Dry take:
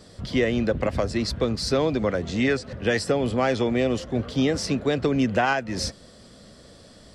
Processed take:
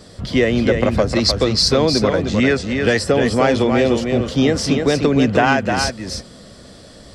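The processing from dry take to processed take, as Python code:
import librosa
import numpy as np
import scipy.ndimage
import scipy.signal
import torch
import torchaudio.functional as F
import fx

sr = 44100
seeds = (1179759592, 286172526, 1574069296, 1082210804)

y = fx.peak_eq(x, sr, hz=4900.0, db=8.5, octaves=0.97, at=(1.15, 1.68))
y = y + 10.0 ** (-5.5 / 20.0) * np.pad(y, (int(306 * sr / 1000.0), 0))[:len(y)]
y = y * librosa.db_to_amplitude(6.5)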